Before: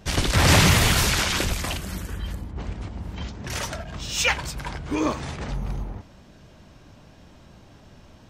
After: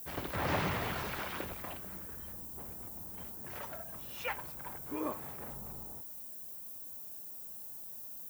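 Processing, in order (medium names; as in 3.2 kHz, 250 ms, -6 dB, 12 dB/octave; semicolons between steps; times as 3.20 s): Bessel low-pass 680 Hz, order 2; added noise violet -59 dBFS; tilt EQ +4.5 dB/octave; trim -5.5 dB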